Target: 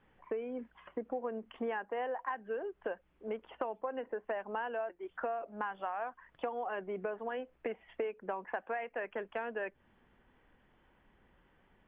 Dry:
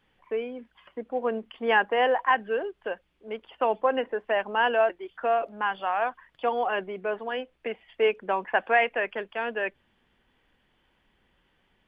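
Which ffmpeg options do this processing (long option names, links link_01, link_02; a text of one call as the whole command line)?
ffmpeg -i in.wav -af "lowpass=1800,acompressor=threshold=-36dB:ratio=12,volume=2dB" out.wav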